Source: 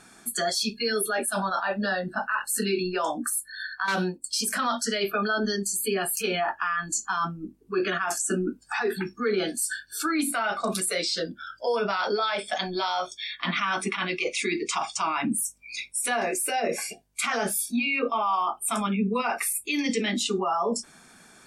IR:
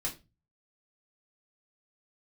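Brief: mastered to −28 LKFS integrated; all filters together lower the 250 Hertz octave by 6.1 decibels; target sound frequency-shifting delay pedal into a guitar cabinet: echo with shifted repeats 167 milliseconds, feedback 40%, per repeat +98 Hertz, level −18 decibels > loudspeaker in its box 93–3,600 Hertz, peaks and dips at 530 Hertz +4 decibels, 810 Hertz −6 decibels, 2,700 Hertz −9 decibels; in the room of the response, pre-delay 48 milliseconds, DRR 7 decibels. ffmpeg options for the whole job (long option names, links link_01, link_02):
-filter_complex "[0:a]equalizer=frequency=250:width_type=o:gain=-8.5,asplit=2[link_01][link_02];[1:a]atrim=start_sample=2205,adelay=48[link_03];[link_02][link_03]afir=irnorm=-1:irlink=0,volume=-9dB[link_04];[link_01][link_04]amix=inputs=2:normalize=0,asplit=4[link_05][link_06][link_07][link_08];[link_06]adelay=167,afreqshift=98,volume=-18dB[link_09];[link_07]adelay=334,afreqshift=196,volume=-26dB[link_10];[link_08]adelay=501,afreqshift=294,volume=-33.9dB[link_11];[link_05][link_09][link_10][link_11]amix=inputs=4:normalize=0,highpass=93,equalizer=frequency=530:width_type=q:width=4:gain=4,equalizer=frequency=810:width_type=q:width=4:gain=-6,equalizer=frequency=2700:width_type=q:width=4:gain=-9,lowpass=frequency=3600:width=0.5412,lowpass=frequency=3600:width=1.3066,volume=1.5dB"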